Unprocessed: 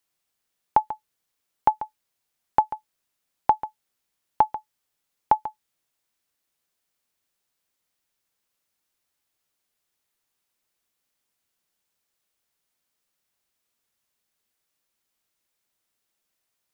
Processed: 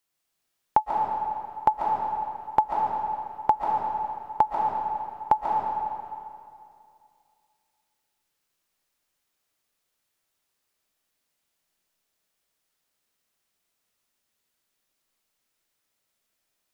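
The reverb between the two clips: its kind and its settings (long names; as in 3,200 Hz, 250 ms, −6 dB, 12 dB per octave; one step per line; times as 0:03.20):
comb and all-pass reverb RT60 2.4 s, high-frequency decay 0.85×, pre-delay 100 ms, DRR −1.5 dB
level −1.5 dB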